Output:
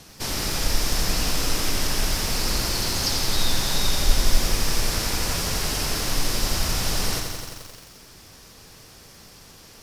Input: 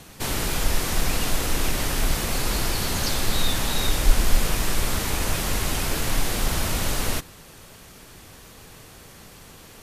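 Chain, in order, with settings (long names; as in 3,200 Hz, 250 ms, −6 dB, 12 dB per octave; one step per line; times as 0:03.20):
parametric band 5,200 Hz +9.5 dB 0.5 octaves
feedback echo at a low word length 87 ms, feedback 80%, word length 7 bits, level −6 dB
level −3 dB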